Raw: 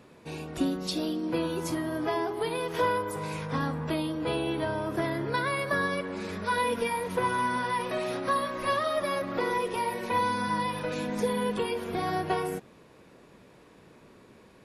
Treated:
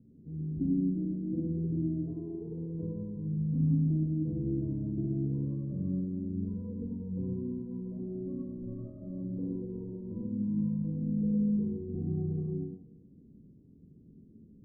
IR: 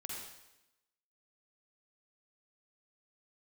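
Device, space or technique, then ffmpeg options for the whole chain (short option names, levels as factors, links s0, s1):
next room: -filter_complex "[0:a]lowpass=f=260:w=0.5412,lowpass=f=260:w=1.3066[s0];[1:a]atrim=start_sample=2205[s1];[s0][s1]afir=irnorm=-1:irlink=0,volume=1.78"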